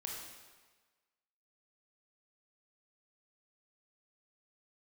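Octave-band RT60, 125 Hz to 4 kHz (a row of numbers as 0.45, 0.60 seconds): 1.2, 1.2, 1.3, 1.4, 1.3, 1.2 seconds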